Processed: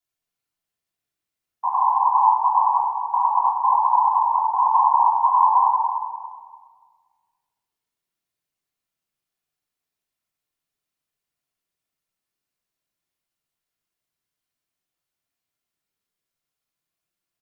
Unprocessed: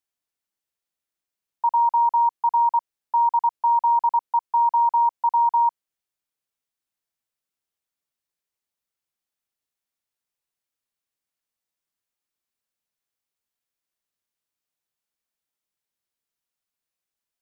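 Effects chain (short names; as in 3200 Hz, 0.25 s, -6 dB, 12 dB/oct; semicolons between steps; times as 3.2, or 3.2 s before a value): whisperiser; on a send: feedback echo 0.288 s, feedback 26%, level -12 dB; on the sum: shoebox room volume 2100 m³, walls mixed, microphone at 3.2 m; gain -2.5 dB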